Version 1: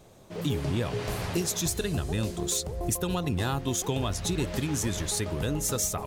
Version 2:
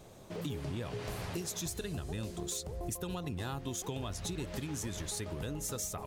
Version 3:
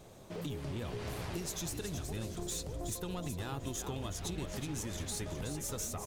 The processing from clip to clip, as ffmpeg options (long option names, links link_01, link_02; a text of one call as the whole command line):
ffmpeg -i in.wav -af "acompressor=threshold=-40dB:ratio=2.5" out.wav
ffmpeg -i in.wav -filter_complex "[0:a]aeval=exprs='(tanh(31.6*val(0)+0.25)-tanh(0.25))/31.6':channel_layout=same,asplit=6[link_01][link_02][link_03][link_04][link_05][link_06];[link_02]adelay=372,afreqshift=-58,volume=-7.5dB[link_07];[link_03]adelay=744,afreqshift=-116,volume=-15dB[link_08];[link_04]adelay=1116,afreqshift=-174,volume=-22.6dB[link_09];[link_05]adelay=1488,afreqshift=-232,volume=-30.1dB[link_10];[link_06]adelay=1860,afreqshift=-290,volume=-37.6dB[link_11];[link_01][link_07][link_08][link_09][link_10][link_11]amix=inputs=6:normalize=0" out.wav